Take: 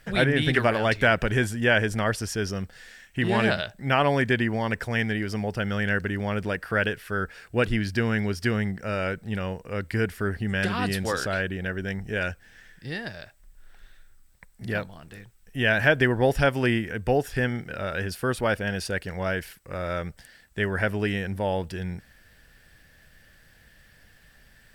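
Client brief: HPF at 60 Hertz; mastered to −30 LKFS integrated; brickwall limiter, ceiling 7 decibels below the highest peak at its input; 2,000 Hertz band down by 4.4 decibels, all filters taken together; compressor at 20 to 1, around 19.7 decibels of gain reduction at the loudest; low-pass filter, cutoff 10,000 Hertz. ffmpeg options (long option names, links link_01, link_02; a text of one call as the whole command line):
ffmpeg -i in.wav -af "highpass=60,lowpass=10000,equalizer=frequency=2000:width_type=o:gain=-6,acompressor=threshold=-37dB:ratio=20,volume=14.5dB,alimiter=limit=-19.5dB:level=0:latency=1" out.wav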